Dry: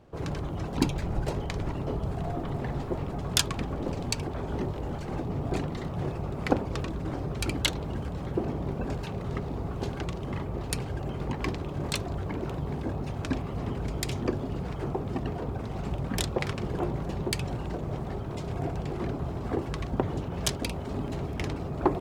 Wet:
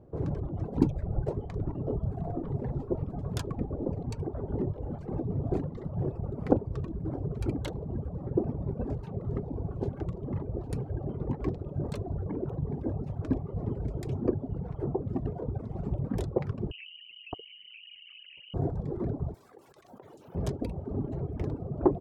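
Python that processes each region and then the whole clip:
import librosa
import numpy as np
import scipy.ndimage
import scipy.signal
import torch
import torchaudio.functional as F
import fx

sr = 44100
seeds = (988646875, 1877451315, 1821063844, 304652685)

y = fx.chain(x, sr, fx.envelope_sharpen(power=2.0),
    fx.freq_invert(carrier_hz=3000),
    fx.env_flatten(amount_pct=70), at=(16.71, 18.54))
y = fx.chain(y, sr, fx.differentiator(),
    fx.env_flatten(amount_pct=100), at=(19.34, 20.35))
y = fx.curve_eq(y, sr, hz=(170.0, 450.0, 2800.0), db=(0, 3, -19))
y = fx.dereverb_blind(y, sr, rt60_s=1.8)
y = fx.peak_eq(y, sr, hz=110.0, db=4.5, octaves=1.2)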